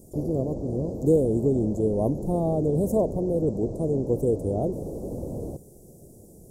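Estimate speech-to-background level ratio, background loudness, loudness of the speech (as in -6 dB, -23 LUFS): 8.5 dB, -34.5 LUFS, -26.0 LUFS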